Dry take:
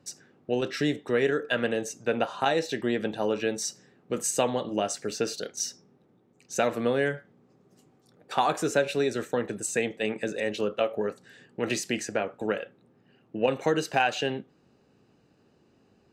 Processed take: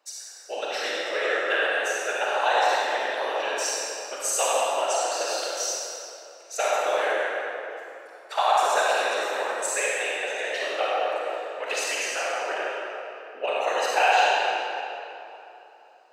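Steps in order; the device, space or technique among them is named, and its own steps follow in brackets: whispering ghost (whisperiser; HPF 580 Hz 24 dB/oct; reverb RT60 3.0 s, pre-delay 36 ms, DRR -6 dB)

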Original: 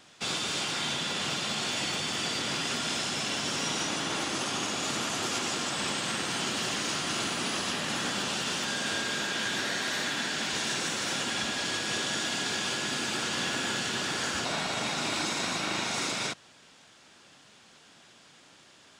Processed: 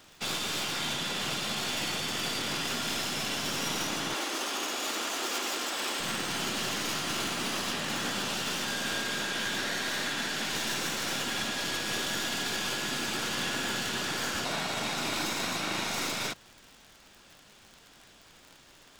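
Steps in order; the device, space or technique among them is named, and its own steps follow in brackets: record under a worn stylus (tracing distortion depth 0.047 ms; crackle 61/s -39 dBFS; pink noise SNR 31 dB); 4.14–6 HPF 280 Hz 24 dB/oct; gain -1 dB

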